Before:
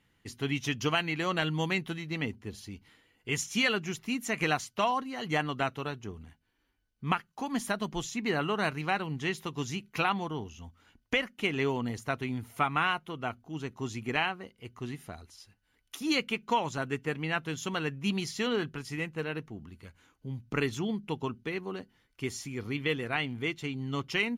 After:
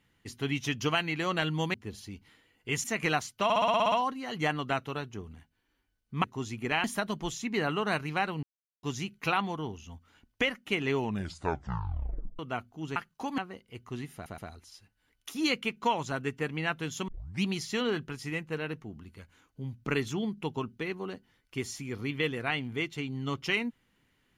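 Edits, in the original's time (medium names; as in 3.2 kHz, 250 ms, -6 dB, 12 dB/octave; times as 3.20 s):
1.74–2.34 s: delete
3.44–4.22 s: delete
4.82 s: stutter 0.06 s, 9 plays
7.14–7.56 s: swap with 13.68–14.28 s
9.15–9.55 s: mute
11.67 s: tape stop 1.44 s
15.04 s: stutter 0.12 s, 3 plays
17.74 s: tape start 0.35 s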